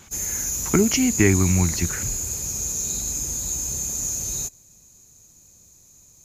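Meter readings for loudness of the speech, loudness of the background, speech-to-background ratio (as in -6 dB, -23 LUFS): -21.0 LUFS, -24.5 LUFS, 3.5 dB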